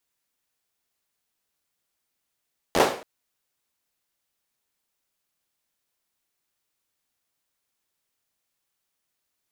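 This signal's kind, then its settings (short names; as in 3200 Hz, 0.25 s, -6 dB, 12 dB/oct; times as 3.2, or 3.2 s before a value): hand clap length 0.28 s, bursts 5, apart 12 ms, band 530 Hz, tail 0.44 s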